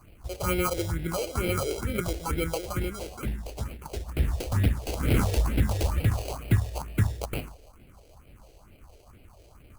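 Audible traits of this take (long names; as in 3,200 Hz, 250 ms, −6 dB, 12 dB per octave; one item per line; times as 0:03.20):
aliases and images of a low sample rate 1,800 Hz, jitter 0%
phaser sweep stages 4, 2.2 Hz, lowest notch 180–1,100 Hz
Opus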